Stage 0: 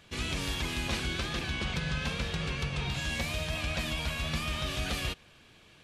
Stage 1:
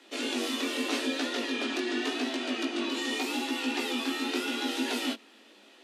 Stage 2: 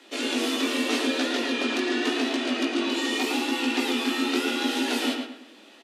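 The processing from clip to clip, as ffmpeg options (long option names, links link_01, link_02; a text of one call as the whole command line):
ffmpeg -i in.wav -af "afreqshift=200,flanger=delay=15:depth=7.2:speed=0.84,volume=4.5dB" out.wav
ffmpeg -i in.wav -filter_complex "[0:a]asplit=2[link_01][link_02];[link_02]adelay=111,lowpass=frequency=3400:poles=1,volume=-4.5dB,asplit=2[link_03][link_04];[link_04]adelay=111,lowpass=frequency=3400:poles=1,volume=0.36,asplit=2[link_05][link_06];[link_06]adelay=111,lowpass=frequency=3400:poles=1,volume=0.36,asplit=2[link_07][link_08];[link_08]adelay=111,lowpass=frequency=3400:poles=1,volume=0.36,asplit=2[link_09][link_10];[link_10]adelay=111,lowpass=frequency=3400:poles=1,volume=0.36[link_11];[link_01][link_03][link_05][link_07][link_09][link_11]amix=inputs=6:normalize=0,volume=4dB" out.wav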